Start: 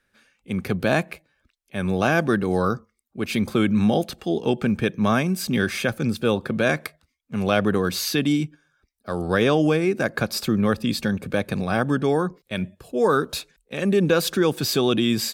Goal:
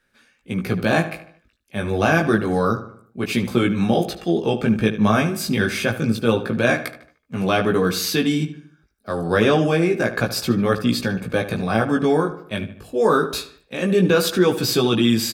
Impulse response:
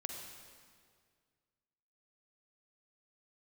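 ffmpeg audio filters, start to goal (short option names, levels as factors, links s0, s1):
-filter_complex "[0:a]flanger=delay=16.5:depth=2.4:speed=0.28,asplit=2[s0][s1];[s1]adelay=75,lowpass=f=3600:p=1,volume=0.251,asplit=2[s2][s3];[s3]adelay=75,lowpass=f=3600:p=1,volume=0.47,asplit=2[s4][s5];[s5]adelay=75,lowpass=f=3600:p=1,volume=0.47,asplit=2[s6][s7];[s7]adelay=75,lowpass=f=3600:p=1,volume=0.47,asplit=2[s8][s9];[s9]adelay=75,lowpass=f=3600:p=1,volume=0.47[s10];[s0][s2][s4][s6][s8][s10]amix=inputs=6:normalize=0,volume=1.88"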